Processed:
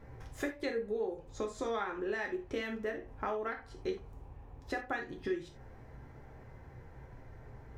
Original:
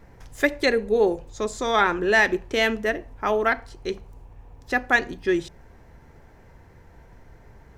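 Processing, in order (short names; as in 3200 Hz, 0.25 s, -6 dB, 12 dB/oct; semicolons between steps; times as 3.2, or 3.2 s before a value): high shelf 2900 Hz -9 dB; compressor 12:1, threshold -31 dBFS, peak gain reduction 16.5 dB; non-linear reverb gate 0.11 s falling, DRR 2 dB; gain -3.5 dB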